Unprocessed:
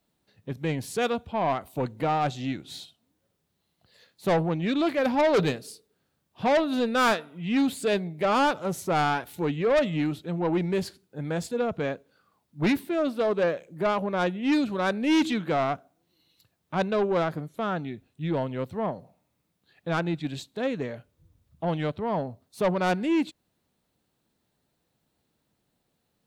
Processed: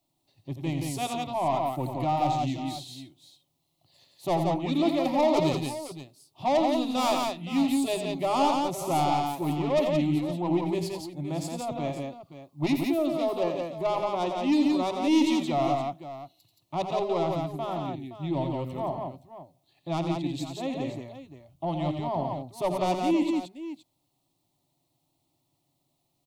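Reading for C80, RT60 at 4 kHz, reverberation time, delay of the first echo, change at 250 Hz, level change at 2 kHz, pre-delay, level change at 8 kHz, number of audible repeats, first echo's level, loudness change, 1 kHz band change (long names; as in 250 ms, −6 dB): no reverb audible, no reverb audible, no reverb audible, 86 ms, +0.5 dB, −8.5 dB, no reverb audible, +2.0 dB, 3, −8.5 dB, −1.0 dB, +1.0 dB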